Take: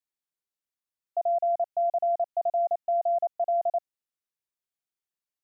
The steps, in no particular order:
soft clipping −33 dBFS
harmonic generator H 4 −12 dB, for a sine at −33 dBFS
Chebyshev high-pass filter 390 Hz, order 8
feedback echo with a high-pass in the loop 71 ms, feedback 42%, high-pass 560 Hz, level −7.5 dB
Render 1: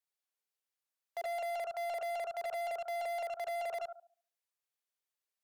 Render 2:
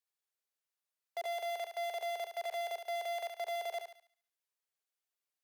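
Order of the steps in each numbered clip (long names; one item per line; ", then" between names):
feedback echo with a high-pass in the loop, then harmonic generator, then Chebyshev high-pass filter, then soft clipping
harmonic generator, then feedback echo with a high-pass in the loop, then soft clipping, then Chebyshev high-pass filter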